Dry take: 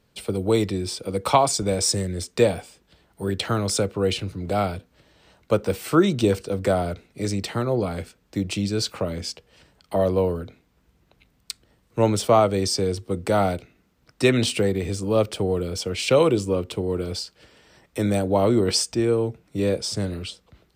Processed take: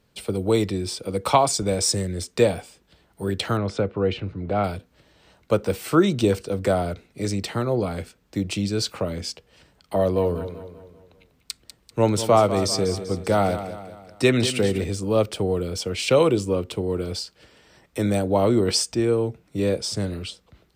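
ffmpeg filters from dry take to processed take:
-filter_complex "[0:a]asettb=1/sr,asplit=3[a][b][c];[a]atrim=end=3.574[d];[b]atrim=start=3.57:end=4.64,asetpts=PTS-STARTPTS,afade=t=in:d=0.004:c=qsin,afade=t=out:st=1.066:d=0.004:c=qsin,lowpass=2.4k[e];[c]atrim=start=4.636[f];[d][e]acrossfade=d=0.004:c1=hsin:c2=qsin[g];[g][f]acrossfade=d=0.004:c1=qsin:c2=hsin,asettb=1/sr,asplit=3[h][i][j];[h]atrim=end=9.964[k];[i]atrim=start=9.96:end=14.84,asetpts=PTS-STARTPTS,afade=t=in:d=0.004:c=qsin,afade=t=out:st=4.876:d=0.004:c=qsin,aecho=1:1:195|390|585|780|975:0.266|0.122|0.0563|0.0259|0.0119,atrim=end_sample=215208[l];[j]atrim=start=14.836[m];[k][l]acrossfade=d=0.004:c1=hsin:c2=qsin[n];[n][m]acrossfade=d=0.004:c1=qsin:c2=hsin"

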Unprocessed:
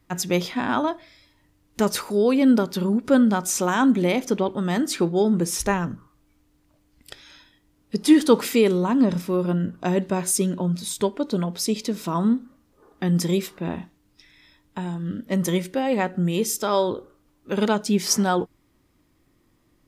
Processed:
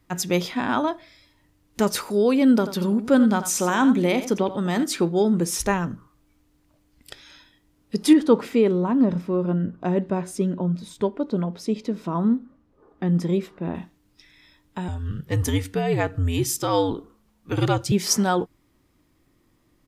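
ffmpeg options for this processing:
-filter_complex "[0:a]asplit=3[a][b][c];[a]afade=t=out:st=2.61:d=0.02[d];[b]aecho=1:1:87:0.251,afade=t=in:st=2.61:d=0.02,afade=t=out:st=4.83:d=0.02[e];[c]afade=t=in:st=4.83:d=0.02[f];[d][e][f]amix=inputs=3:normalize=0,asettb=1/sr,asplit=3[g][h][i];[g]atrim=end=8.134[j];[h]atrim=start=8.13:end=13.75,asetpts=PTS-STARTPTS,afade=t=in:d=0.004:c=qsin,afade=t=out:st=5.616:d=0.004:c=qsin,lowpass=f=1.2k:p=1[k];[i]atrim=start=13.746[l];[j][k]acrossfade=d=0.004:c1=hsin:c2=qsin[m];[m][l]acrossfade=d=0.004:c1=qsin:c2=hsin,asettb=1/sr,asplit=3[n][o][p];[n]atrim=end=14.884[q];[o]atrim=start=14.88:end=17.92,asetpts=PTS-STARTPTS,afade=t=in:d=0.004:c=qsin,afade=t=out:st=3.036:d=0.004:c=qsin,afreqshift=-85[r];[p]atrim=start=17.916[s];[q][r]acrossfade=d=0.004:c1=hsin:c2=qsin[t];[t][s]acrossfade=d=0.004:c1=qsin:c2=hsin"

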